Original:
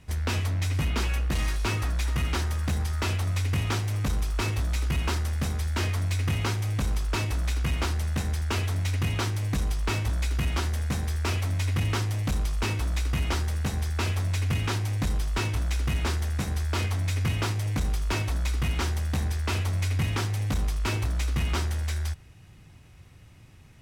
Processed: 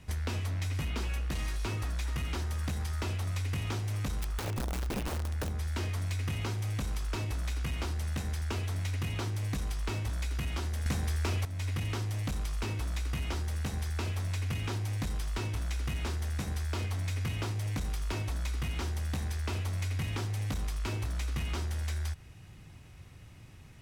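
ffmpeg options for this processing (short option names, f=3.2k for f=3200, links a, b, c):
-filter_complex "[0:a]asplit=3[a][b][c];[a]afade=t=out:st=4.22:d=0.02[d];[b]aeval=exprs='(mod(11.9*val(0)+1,2)-1)/11.9':c=same,afade=t=in:st=4.22:d=0.02,afade=t=out:st=5.48:d=0.02[e];[c]afade=t=in:st=5.48:d=0.02[f];[d][e][f]amix=inputs=3:normalize=0,asplit=3[g][h][i];[g]atrim=end=10.862[j];[h]atrim=start=10.858:end=11.452,asetpts=PTS-STARTPTS,volume=11dB[k];[i]atrim=start=11.448[l];[j][k]acrossfade=d=0.004:c1=hsin:c2=hsin[m];[m][l]acrossfade=d=0.004:c1=hsin:c2=hsin,acrossover=split=930|2300[n][o][p];[n]acompressor=threshold=-32dB:ratio=4[q];[o]acompressor=threshold=-49dB:ratio=4[r];[p]acompressor=threshold=-45dB:ratio=4[s];[q][r][s]amix=inputs=3:normalize=0"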